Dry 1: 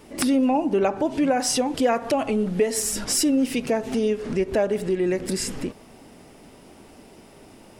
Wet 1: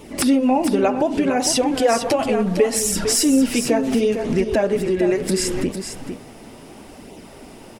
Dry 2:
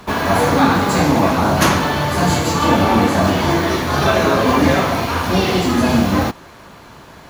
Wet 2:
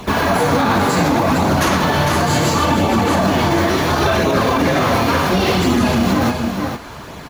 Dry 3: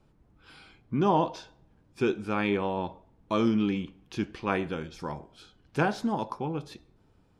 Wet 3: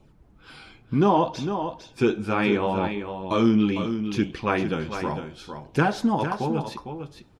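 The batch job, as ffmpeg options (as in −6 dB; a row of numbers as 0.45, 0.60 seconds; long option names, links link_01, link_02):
-filter_complex "[0:a]asplit=2[link_01][link_02];[link_02]acompressor=threshold=-27dB:ratio=6,volume=-2dB[link_03];[link_01][link_03]amix=inputs=2:normalize=0,flanger=delay=0.3:depth=8.8:regen=-32:speed=0.7:shape=sinusoidal,aecho=1:1:454:0.376,alimiter=level_in=10.5dB:limit=-1dB:release=50:level=0:latency=1,volume=-5.5dB"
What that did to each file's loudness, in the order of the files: +4.0, 0.0, +5.0 LU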